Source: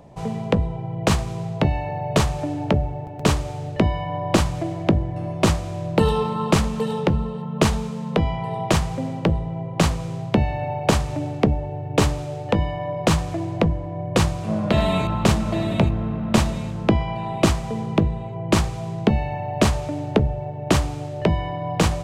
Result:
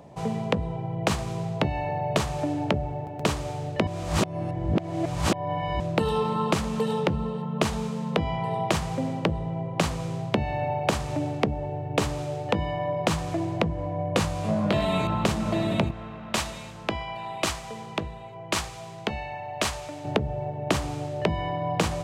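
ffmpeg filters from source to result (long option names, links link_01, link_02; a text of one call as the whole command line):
ffmpeg -i in.wav -filter_complex "[0:a]asettb=1/sr,asplit=3[link_01][link_02][link_03];[link_01]atrim=end=13.764[link_04];[link_02]atrim=start=13.76:end=14.85,asetpts=PTS-STARTPTS,afade=type=in:duration=0.004:curve=qsin,afade=type=out:start_time=1.086:duration=0.004:curve=qsin,asplit=2[link_05][link_06];[link_06]adelay=20,volume=-4.5dB[link_07];[link_05][link_07]amix=inputs=2:normalize=0,atrim=end_sample=48069[link_08];[link_03]atrim=start=14.846[link_09];[link_04][link_08]acrossfade=duration=0.004:curve1=hsin:curve2=qsin[link_10];[link_10][link_09]acrossfade=duration=0.004:curve1=qsin:curve2=hsin,asettb=1/sr,asplit=3[link_11][link_12][link_13];[link_11]atrim=end=15.914[link_14];[link_12]atrim=start=15.91:end=20.05,asetpts=PTS-STARTPTS,afade=type=in:duration=0.004:curve=qsin,afade=type=out:start_time=4.136:duration=0.004:curve=qsin,equalizer=frequency=180:width=0.32:gain=-14[link_15];[link_13]atrim=start=20.046[link_16];[link_14][link_15]acrossfade=duration=0.004:curve1=hsin:curve2=qsin[link_17];[link_17][link_16]acrossfade=duration=0.004:curve1=qsin:curve2=hsin,asplit=3[link_18][link_19][link_20];[link_18]atrim=end=3.872[link_21];[link_19]atrim=start=3.868:end=5.802,asetpts=PTS-STARTPTS,areverse[link_22];[link_20]atrim=start=5.798[link_23];[link_21][link_22]acrossfade=duration=0.004:curve1=hsin:curve2=hsin[link_24];[link_24][link_23]acrossfade=duration=0.004:curve1=hsin:curve2=hsin,highpass=frequency=120:poles=1,acompressor=threshold=-20dB:ratio=6" out.wav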